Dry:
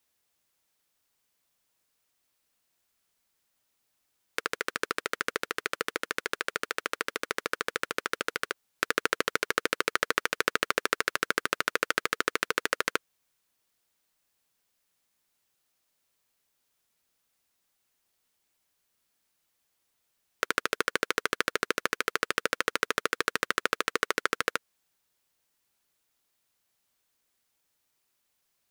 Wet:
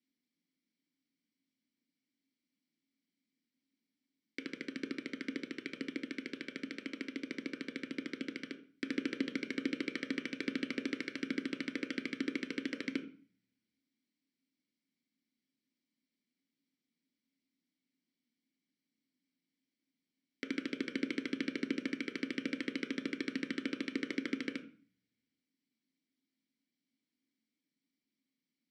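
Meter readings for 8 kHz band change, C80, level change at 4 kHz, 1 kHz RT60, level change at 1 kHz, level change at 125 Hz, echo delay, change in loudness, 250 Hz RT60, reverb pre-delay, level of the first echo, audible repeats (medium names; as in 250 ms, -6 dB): -20.5 dB, 16.5 dB, -12.0 dB, 0.45 s, -25.0 dB, -2.5 dB, no echo, -9.5 dB, 0.70 s, 3 ms, no echo, no echo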